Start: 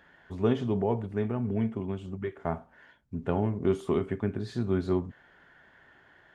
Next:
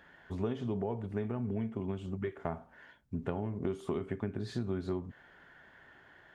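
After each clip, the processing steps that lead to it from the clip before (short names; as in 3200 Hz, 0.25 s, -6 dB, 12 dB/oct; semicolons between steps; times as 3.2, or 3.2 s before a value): compressor 6:1, threshold -31 dBFS, peak gain reduction 11 dB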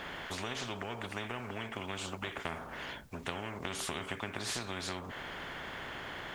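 spectral compressor 4:1; gain +2.5 dB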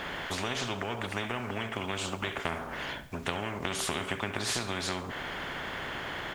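feedback echo 70 ms, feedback 46%, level -15.5 dB; gain +5.5 dB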